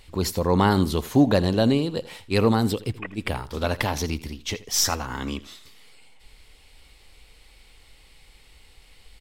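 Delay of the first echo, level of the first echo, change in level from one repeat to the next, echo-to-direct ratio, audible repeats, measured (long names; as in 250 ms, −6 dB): 81 ms, −17.5 dB, −15.0 dB, −17.5 dB, 2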